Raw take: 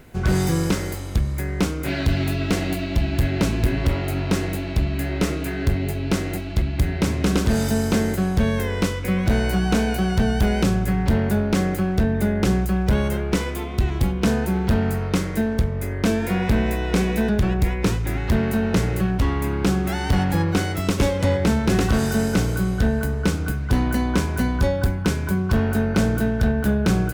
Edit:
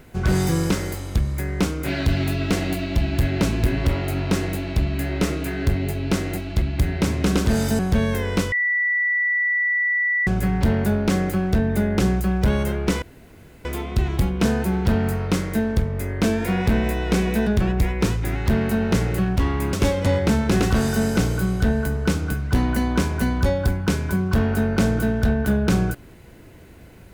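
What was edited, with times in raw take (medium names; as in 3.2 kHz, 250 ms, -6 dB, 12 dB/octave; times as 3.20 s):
7.79–8.24 s: delete
8.97–10.72 s: bleep 1.96 kHz -18 dBFS
13.47 s: insert room tone 0.63 s
19.55–20.91 s: delete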